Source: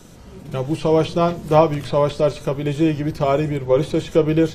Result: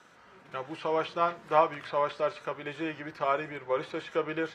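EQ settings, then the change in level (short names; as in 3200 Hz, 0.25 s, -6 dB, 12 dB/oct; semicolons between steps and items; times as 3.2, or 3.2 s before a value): band-pass 1500 Hz, Q 1.7; 0.0 dB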